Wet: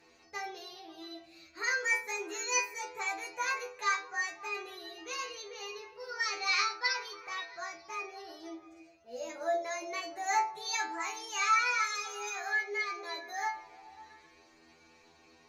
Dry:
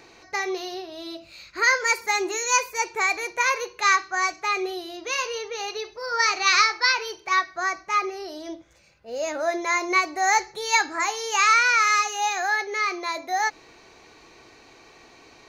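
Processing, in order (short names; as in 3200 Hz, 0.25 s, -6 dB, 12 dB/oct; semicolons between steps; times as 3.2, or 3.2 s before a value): metallic resonator 80 Hz, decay 0.53 s, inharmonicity 0.002; on a send: delay with a stepping band-pass 0.135 s, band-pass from 210 Hz, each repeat 0.7 oct, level -8 dB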